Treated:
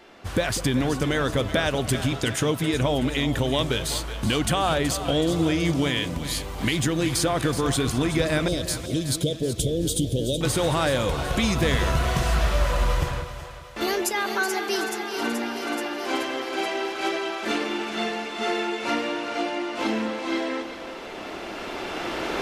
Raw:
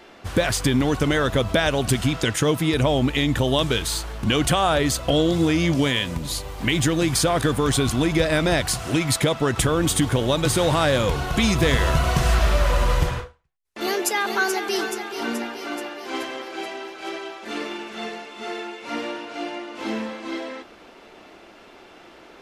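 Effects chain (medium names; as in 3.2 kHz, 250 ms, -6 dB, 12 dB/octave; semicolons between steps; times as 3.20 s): recorder AGC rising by 7.6 dB/s; 8.48–10.41 s: Chebyshev band-stop 540–3300 Hz, order 3; two-band feedback delay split 570 Hz, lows 196 ms, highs 375 ms, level -11 dB; trim -3.5 dB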